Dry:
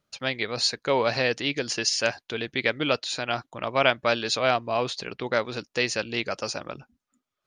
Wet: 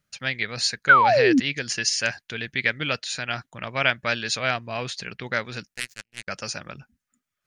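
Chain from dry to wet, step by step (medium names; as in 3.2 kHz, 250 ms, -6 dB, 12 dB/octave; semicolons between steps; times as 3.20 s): 0.89–1.40 s: painted sound fall 240–1600 Hz -12 dBFS; 5.74–6.28 s: power-law waveshaper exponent 3; FFT filter 190 Hz 0 dB, 300 Hz -9 dB, 1.1 kHz -8 dB, 1.7 kHz +3 dB, 3.7 kHz -4 dB, 8.3 kHz +2 dB; trim +2.5 dB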